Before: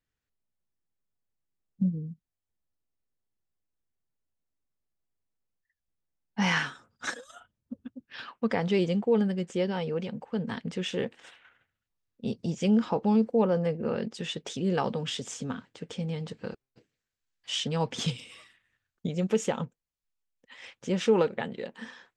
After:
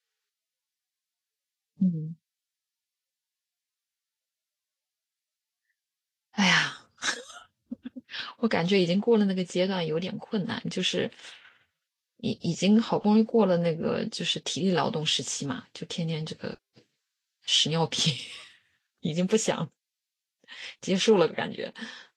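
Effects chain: peaking EQ 4.3 kHz +8 dB 1.7 oct; trim +2 dB; Vorbis 32 kbps 48 kHz

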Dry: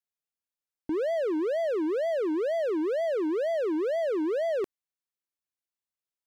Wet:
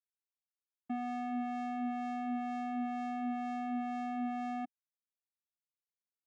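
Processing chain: power-law waveshaper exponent 2; vocoder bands 4, square 245 Hz; trim -6.5 dB

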